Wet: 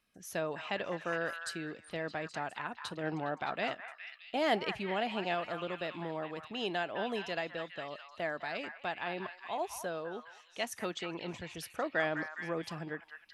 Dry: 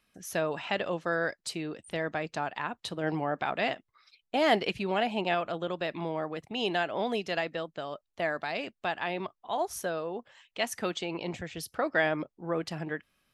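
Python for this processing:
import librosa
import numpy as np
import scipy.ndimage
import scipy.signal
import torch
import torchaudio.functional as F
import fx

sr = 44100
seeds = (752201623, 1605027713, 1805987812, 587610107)

y = fx.echo_stepped(x, sr, ms=206, hz=1300.0, octaves=0.7, feedback_pct=70, wet_db=-4.5)
y = y * librosa.db_to_amplitude(-5.5)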